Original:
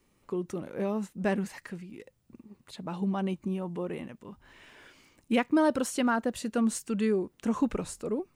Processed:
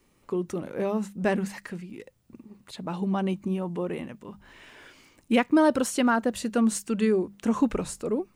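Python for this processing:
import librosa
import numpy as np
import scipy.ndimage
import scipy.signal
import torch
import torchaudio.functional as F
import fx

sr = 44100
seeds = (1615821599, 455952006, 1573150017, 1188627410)

y = fx.hum_notches(x, sr, base_hz=50, count=4)
y = F.gain(torch.from_numpy(y), 4.0).numpy()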